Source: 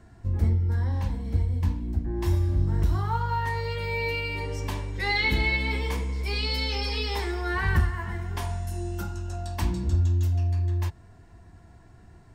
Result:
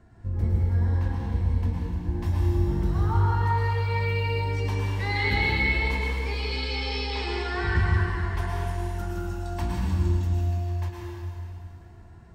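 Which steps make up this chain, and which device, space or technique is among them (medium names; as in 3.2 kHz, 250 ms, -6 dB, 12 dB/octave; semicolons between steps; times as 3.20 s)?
6.09–7.82 s: elliptic low-pass 8.2 kHz; swimming-pool hall (reverberation RT60 2.5 s, pre-delay 98 ms, DRR -3.5 dB; treble shelf 3.8 kHz -7.5 dB); trim -3 dB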